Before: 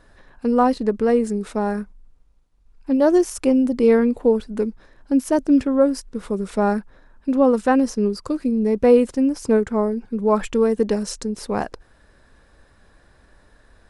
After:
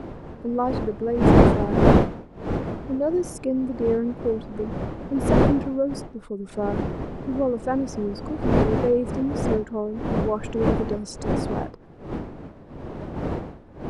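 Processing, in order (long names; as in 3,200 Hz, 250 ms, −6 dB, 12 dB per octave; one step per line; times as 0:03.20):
spectral envelope exaggerated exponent 1.5
wind on the microphone 400 Hz −17 dBFS
level −7.5 dB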